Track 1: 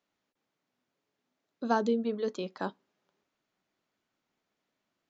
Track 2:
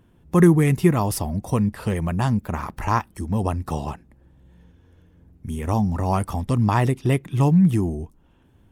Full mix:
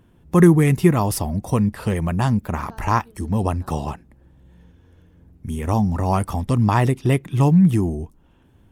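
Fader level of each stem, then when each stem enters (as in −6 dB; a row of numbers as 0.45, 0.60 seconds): −19.0, +2.0 decibels; 1.00, 0.00 seconds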